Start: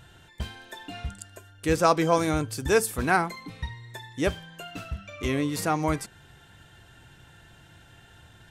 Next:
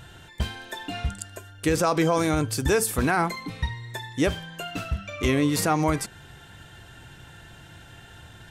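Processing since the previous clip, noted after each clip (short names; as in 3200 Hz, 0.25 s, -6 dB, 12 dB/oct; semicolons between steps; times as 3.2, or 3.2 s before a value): limiter -18.5 dBFS, peak gain reduction 10.5 dB; gain +6 dB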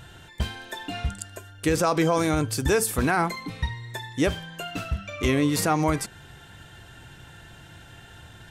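nothing audible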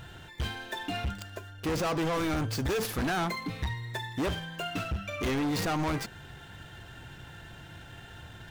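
median filter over 5 samples; hard clip -27 dBFS, distortion -5 dB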